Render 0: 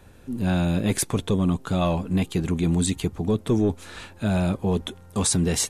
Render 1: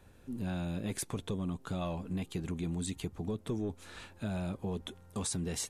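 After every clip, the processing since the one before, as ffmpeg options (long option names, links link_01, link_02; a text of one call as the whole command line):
ffmpeg -i in.wav -af "acompressor=threshold=-25dB:ratio=2.5,volume=-9dB" out.wav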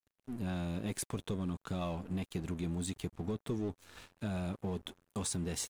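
ffmpeg -i in.wav -af "aeval=exprs='sgn(val(0))*max(abs(val(0))-0.00266,0)':channel_layout=same" out.wav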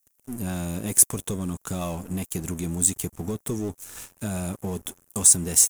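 ffmpeg -i in.wav -af "aexciter=amount=6.8:drive=5.5:freq=5900,volume=7dB" out.wav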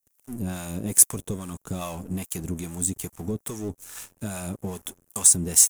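ffmpeg -i in.wav -filter_complex "[0:a]acrossover=split=650[link_01][link_02];[link_01]aeval=exprs='val(0)*(1-0.7/2+0.7/2*cos(2*PI*2.4*n/s))':channel_layout=same[link_03];[link_02]aeval=exprs='val(0)*(1-0.7/2-0.7/2*cos(2*PI*2.4*n/s))':channel_layout=same[link_04];[link_03][link_04]amix=inputs=2:normalize=0,volume=1.5dB" out.wav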